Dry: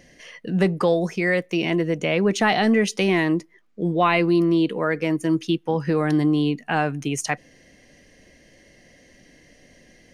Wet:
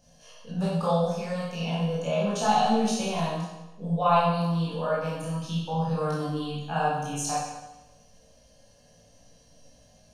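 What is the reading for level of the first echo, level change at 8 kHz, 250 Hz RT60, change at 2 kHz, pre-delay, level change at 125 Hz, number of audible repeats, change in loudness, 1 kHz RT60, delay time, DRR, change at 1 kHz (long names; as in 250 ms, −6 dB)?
no echo audible, −1.0 dB, 1.0 s, −12.5 dB, 18 ms, −2.5 dB, no echo audible, −5.5 dB, 1.0 s, no echo audible, −8.5 dB, 0.0 dB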